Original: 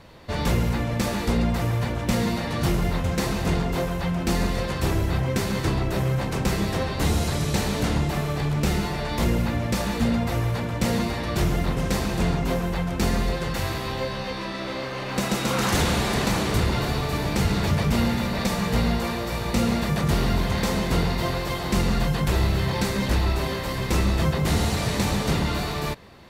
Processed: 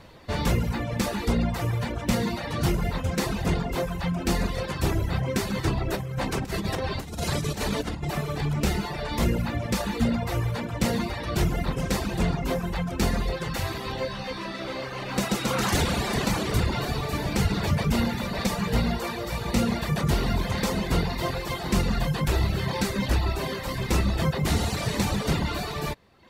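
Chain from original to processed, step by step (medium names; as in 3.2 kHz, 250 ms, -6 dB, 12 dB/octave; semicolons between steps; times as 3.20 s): reverb removal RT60 0.92 s; 5.86–8.05 s: compressor with a negative ratio -28 dBFS, ratio -0.5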